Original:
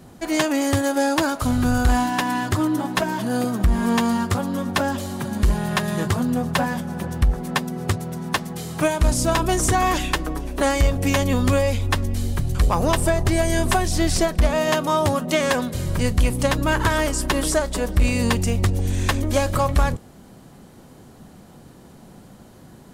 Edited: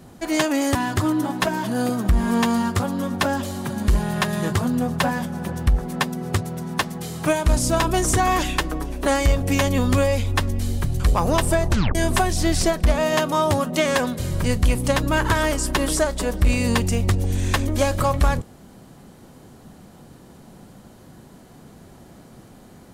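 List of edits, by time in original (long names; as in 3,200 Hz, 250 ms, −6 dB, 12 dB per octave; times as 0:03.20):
0:00.75–0:02.30: remove
0:13.24: tape stop 0.26 s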